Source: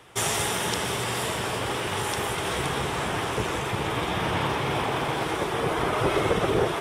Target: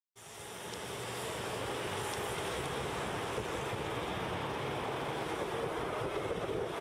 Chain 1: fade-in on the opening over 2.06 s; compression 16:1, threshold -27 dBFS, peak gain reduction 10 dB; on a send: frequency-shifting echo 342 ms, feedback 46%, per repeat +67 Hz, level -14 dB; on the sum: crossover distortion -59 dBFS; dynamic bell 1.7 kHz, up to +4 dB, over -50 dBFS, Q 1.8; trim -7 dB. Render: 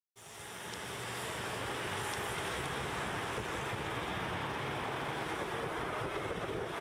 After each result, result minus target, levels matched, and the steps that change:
crossover distortion: distortion +10 dB; 2 kHz band +3.0 dB
change: crossover distortion -69 dBFS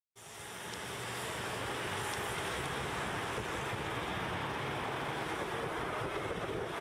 2 kHz band +3.0 dB
change: dynamic bell 480 Hz, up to +4 dB, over -50 dBFS, Q 1.8

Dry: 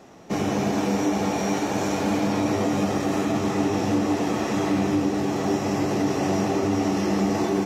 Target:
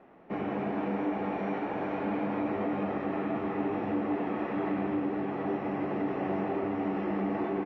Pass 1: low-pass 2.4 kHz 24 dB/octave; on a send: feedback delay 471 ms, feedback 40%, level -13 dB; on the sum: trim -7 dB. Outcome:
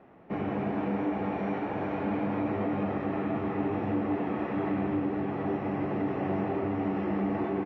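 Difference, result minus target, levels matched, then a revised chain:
125 Hz band +4.0 dB
low-pass 2.4 kHz 24 dB/octave; peaking EQ 100 Hz -9.5 dB 1.2 oct; on a send: feedback delay 471 ms, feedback 40%, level -13 dB; on the sum: trim -7 dB

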